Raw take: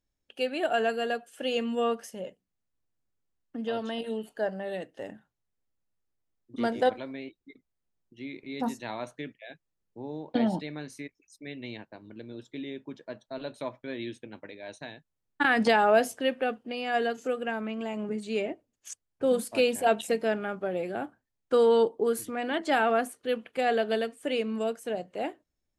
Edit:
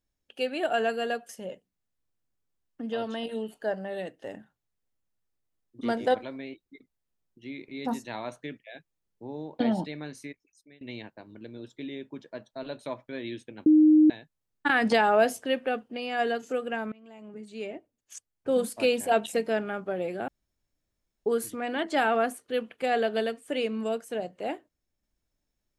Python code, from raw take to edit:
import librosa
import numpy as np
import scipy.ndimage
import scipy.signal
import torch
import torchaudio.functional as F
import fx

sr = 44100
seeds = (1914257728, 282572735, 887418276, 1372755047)

y = fx.edit(x, sr, fx.cut(start_s=1.29, length_s=0.75),
    fx.fade_out_to(start_s=10.99, length_s=0.57, floor_db=-23.5),
    fx.bleep(start_s=14.41, length_s=0.44, hz=308.0, db=-14.0),
    fx.fade_in_from(start_s=17.67, length_s=1.69, floor_db=-23.0),
    fx.room_tone_fill(start_s=21.03, length_s=0.98), tone=tone)